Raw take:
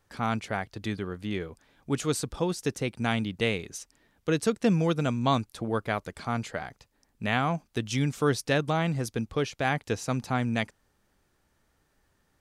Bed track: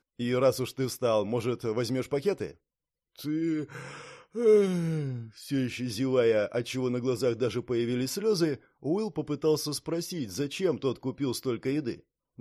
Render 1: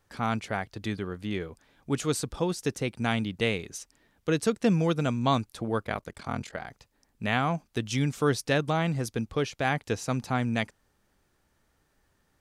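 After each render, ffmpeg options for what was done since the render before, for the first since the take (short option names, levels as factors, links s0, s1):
-filter_complex "[0:a]asettb=1/sr,asplit=3[s0][s1][s2];[s0]atrim=end=5.834[s3];[s1]atrim=start=5.83:end=6.67,asetpts=PTS-STARTPTS,afade=t=in:d=0.004:c=qsin,afade=t=out:st=0.836:d=0.004:c=qsin,aeval=exprs='val(0)*sin(2*PI*21*n/s)':c=same[s4];[s2]atrim=start=6.666[s5];[s3][s4]acrossfade=d=0.004:c1=hsin:c2=qsin[s6];[s6][s5]acrossfade=d=0.004:c1=qsin:c2=hsin"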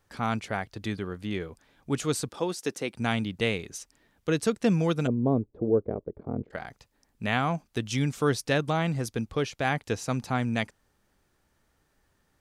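-filter_complex "[0:a]asettb=1/sr,asplit=3[s0][s1][s2];[s0]atrim=end=2.294[s3];[s1]atrim=start=2.29:end=2.94,asetpts=PTS-STARTPTS,afade=t=in:d=0.004:c=qsin,afade=t=out:st=0.646:d=0.004:c=qsin,highpass=240[s4];[s2]atrim=start=2.936[s5];[s3][s4]acrossfade=d=0.004:c1=hsin:c2=qsin[s6];[s6][s5]acrossfade=d=0.004:c1=qsin:c2=hsin,asplit=3[s7][s8][s9];[s7]afade=t=out:st=5.06:d=0.02[s10];[s8]lowpass=f=430:t=q:w=2.9,afade=t=in:st=5.06:d=0.02,afade=t=out:st=6.5:d=0.02[s11];[s9]afade=t=in:st=6.5:d=0.02[s12];[s10][s11][s12]amix=inputs=3:normalize=0"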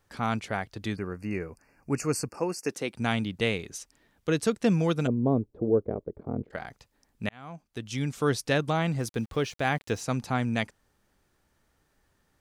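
-filter_complex "[0:a]asettb=1/sr,asplit=3[s0][s1][s2];[s0]atrim=end=0.964[s3];[s1]atrim=start=0.96:end=2.69,asetpts=PTS-STARTPTS,afade=t=in:d=0.004:c=qsin,afade=t=out:st=1.726:d=0.004:c=qsin,asuperstop=centerf=3500:order=20:qfactor=2.3[s4];[s2]atrim=start=2.686[s5];[s3][s4]acrossfade=d=0.004:c1=hsin:c2=qsin[s6];[s6][s5]acrossfade=d=0.004:c1=qsin:c2=hsin,asettb=1/sr,asplit=3[s7][s8][s9];[s7]atrim=end=8.984[s10];[s8]atrim=start=8.98:end=10.02,asetpts=PTS-STARTPTS,afade=t=in:d=0.004:c=qsin,afade=t=out:st=1.036:d=0.004:c=qsin,aeval=exprs='val(0)*gte(abs(val(0)),0.00355)':c=same[s11];[s9]atrim=start=10.016[s12];[s10][s11]acrossfade=d=0.004:c1=hsin:c2=qsin[s13];[s13][s12]acrossfade=d=0.004:c1=qsin:c2=hsin,asplit=2[s14][s15];[s14]atrim=end=7.29,asetpts=PTS-STARTPTS,afade=t=out:st=7.286:d=0.004:c=hsin[s16];[s15]atrim=start=7.29,asetpts=PTS-STARTPTS,afade=t=in:d=1.07[s17];[s16][s17]concat=n=2:v=0:a=1"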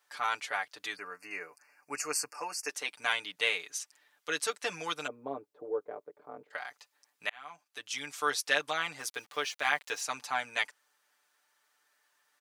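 -af "highpass=1000,aecho=1:1:6.8:0.81"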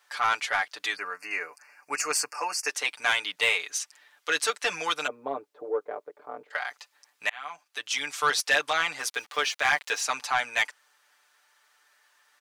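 -filter_complex "[0:a]asplit=2[s0][s1];[s1]highpass=f=720:p=1,volume=5.62,asoftclip=type=tanh:threshold=0.266[s2];[s0][s2]amix=inputs=2:normalize=0,lowpass=f=6300:p=1,volume=0.501"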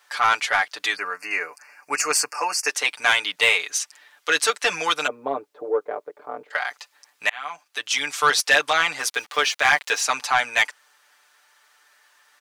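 -af "volume=2"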